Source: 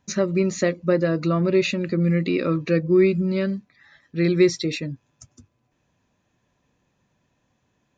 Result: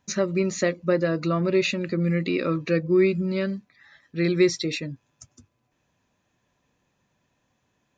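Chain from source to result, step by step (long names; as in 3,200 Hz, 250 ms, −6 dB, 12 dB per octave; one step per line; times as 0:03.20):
low-shelf EQ 470 Hz −4 dB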